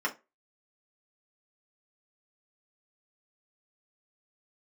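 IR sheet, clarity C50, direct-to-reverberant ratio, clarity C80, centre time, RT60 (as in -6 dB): 17.0 dB, -3.5 dB, 25.5 dB, 10 ms, 0.25 s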